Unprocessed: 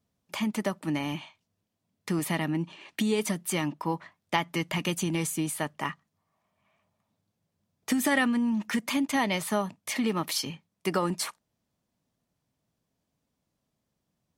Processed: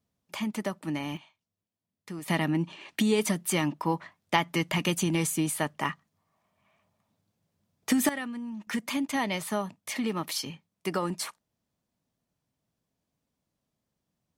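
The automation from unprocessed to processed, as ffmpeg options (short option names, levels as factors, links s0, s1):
-af "asetnsamples=n=441:p=0,asendcmd='1.17 volume volume -10dB;2.28 volume volume 2dB;8.09 volume volume -10.5dB;8.67 volume volume -2.5dB',volume=0.75"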